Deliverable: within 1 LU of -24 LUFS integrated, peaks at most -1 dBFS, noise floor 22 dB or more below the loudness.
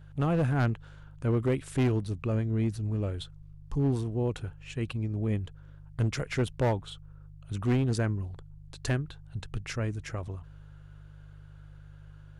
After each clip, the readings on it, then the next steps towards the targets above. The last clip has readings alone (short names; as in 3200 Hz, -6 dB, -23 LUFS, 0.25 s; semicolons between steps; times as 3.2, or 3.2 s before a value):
clipped 1.3%; flat tops at -21.0 dBFS; hum 50 Hz; harmonics up to 150 Hz; hum level -48 dBFS; loudness -31.0 LUFS; peak -21.0 dBFS; loudness target -24.0 LUFS
-> clip repair -21 dBFS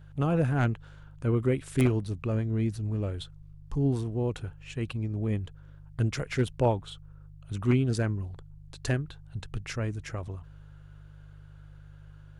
clipped 0.0%; hum 50 Hz; harmonics up to 150 Hz; hum level -48 dBFS
-> de-hum 50 Hz, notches 3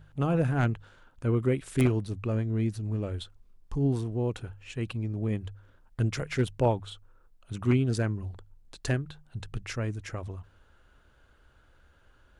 hum none; loudness -30.5 LUFS; peak -12.0 dBFS; loudness target -24.0 LUFS
-> gain +6.5 dB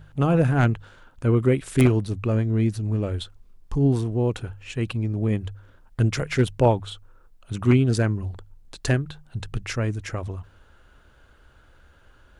loudness -24.0 LUFS; peak -5.5 dBFS; noise floor -55 dBFS